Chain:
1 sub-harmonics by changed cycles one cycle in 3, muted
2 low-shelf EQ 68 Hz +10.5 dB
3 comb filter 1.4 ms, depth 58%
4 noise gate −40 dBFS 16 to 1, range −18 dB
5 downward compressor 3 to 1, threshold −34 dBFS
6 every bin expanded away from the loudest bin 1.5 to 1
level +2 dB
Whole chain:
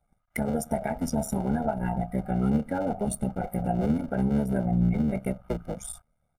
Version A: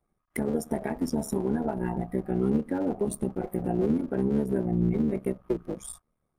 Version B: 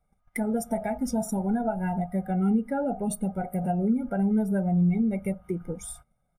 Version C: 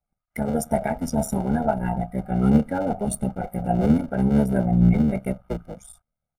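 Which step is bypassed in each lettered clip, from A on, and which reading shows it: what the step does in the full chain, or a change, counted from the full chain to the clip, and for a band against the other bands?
3, 500 Hz band +5.5 dB
1, 250 Hz band +2.0 dB
5, average gain reduction 9.5 dB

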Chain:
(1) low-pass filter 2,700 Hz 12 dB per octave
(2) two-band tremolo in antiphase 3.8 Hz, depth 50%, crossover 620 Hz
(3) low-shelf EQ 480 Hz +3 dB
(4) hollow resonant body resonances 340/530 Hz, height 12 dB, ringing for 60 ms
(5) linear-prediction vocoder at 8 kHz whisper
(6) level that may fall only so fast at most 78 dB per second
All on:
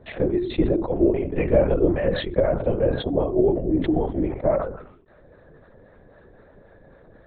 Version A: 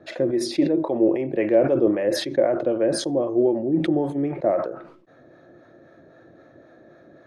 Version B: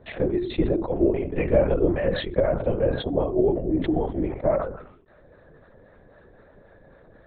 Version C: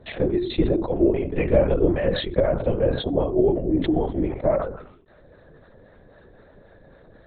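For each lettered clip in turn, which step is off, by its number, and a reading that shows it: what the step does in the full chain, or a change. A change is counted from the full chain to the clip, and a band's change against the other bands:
5, 125 Hz band −7.0 dB
3, change in integrated loudness −1.5 LU
1, 4 kHz band +3.5 dB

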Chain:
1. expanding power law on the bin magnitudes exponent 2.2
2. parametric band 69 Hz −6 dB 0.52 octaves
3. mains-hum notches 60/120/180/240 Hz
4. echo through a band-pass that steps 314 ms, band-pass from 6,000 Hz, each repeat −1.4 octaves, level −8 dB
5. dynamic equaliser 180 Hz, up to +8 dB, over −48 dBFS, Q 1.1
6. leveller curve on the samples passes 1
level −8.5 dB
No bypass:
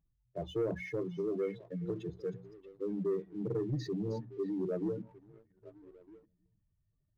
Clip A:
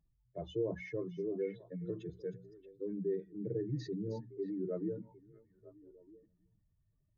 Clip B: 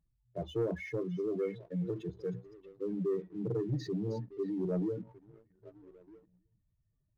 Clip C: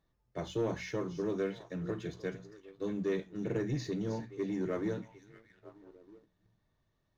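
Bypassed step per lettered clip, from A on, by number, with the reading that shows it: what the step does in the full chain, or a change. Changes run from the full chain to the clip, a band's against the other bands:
6, change in crest factor +3.0 dB
3, 125 Hz band +2.5 dB
1, 500 Hz band −5.0 dB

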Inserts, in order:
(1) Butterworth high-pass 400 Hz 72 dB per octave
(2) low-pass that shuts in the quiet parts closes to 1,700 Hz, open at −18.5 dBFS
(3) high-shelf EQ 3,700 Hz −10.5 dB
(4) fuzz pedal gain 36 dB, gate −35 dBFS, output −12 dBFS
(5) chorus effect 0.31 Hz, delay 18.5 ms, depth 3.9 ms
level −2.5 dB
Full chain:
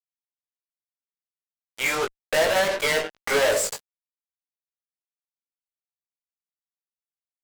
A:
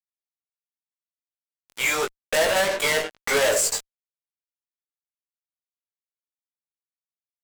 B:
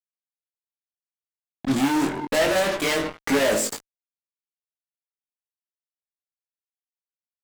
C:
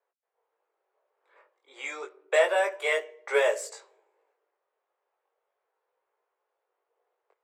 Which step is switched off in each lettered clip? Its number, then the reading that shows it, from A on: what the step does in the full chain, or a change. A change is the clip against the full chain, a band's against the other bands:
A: 3, 8 kHz band +5.0 dB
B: 1, 250 Hz band +15.5 dB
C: 4, distortion level −3 dB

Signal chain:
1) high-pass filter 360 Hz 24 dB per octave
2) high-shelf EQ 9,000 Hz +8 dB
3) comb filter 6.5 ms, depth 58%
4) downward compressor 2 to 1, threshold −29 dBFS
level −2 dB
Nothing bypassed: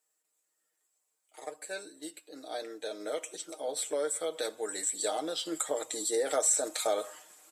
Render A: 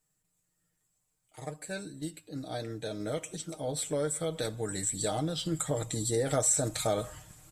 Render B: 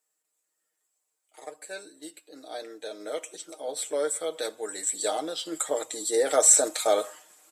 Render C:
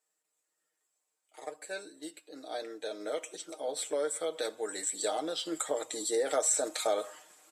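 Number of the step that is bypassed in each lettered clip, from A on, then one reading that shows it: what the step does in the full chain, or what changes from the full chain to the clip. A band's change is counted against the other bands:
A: 1, 250 Hz band +7.0 dB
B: 4, change in crest factor +3.5 dB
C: 2, 8 kHz band −2.0 dB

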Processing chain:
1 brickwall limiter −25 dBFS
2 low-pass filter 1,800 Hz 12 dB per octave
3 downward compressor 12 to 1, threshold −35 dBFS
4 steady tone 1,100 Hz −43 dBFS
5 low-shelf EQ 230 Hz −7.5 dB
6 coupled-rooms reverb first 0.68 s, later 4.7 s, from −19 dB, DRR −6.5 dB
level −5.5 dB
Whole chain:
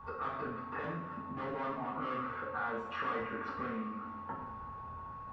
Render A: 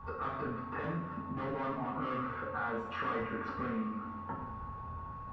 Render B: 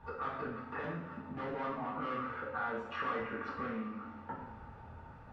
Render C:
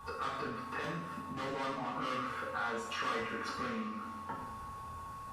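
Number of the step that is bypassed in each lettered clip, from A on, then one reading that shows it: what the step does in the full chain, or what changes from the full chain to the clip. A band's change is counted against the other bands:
5, 125 Hz band +5.0 dB
4, 1 kHz band −1.5 dB
2, 4 kHz band +10.0 dB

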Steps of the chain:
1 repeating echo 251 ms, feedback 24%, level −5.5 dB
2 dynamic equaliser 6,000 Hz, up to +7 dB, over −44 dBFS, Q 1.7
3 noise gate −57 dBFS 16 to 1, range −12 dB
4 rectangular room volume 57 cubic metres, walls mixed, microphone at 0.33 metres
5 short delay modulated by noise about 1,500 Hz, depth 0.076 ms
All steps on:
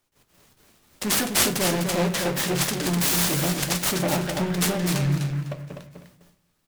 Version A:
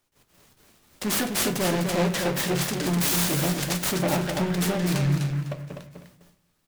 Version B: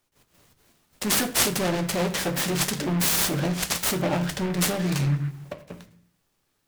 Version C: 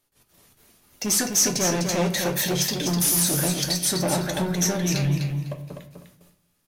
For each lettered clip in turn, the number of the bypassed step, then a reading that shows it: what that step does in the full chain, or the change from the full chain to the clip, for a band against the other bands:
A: 2, 8 kHz band −3.0 dB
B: 1, change in momentary loudness spread −3 LU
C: 5, 8 kHz band +4.0 dB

